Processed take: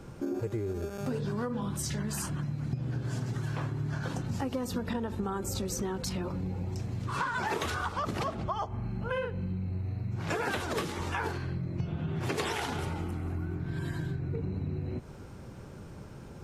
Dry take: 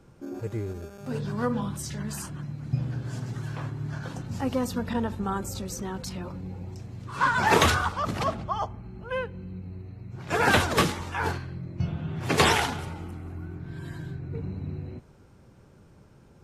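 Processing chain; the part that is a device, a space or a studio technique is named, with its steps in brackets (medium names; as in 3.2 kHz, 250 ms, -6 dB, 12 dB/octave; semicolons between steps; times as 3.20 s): dynamic bell 380 Hz, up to +5 dB, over -44 dBFS, Q 2.3; 8.68–10.32 s: doubling 42 ms -3 dB; serial compression, leveller first (compression 2.5:1, threshold -28 dBFS, peak gain reduction 10 dB; compression 4:1, threshold -40 dBFS, peak gain reduction 14.5 dB); trim +8.5 dB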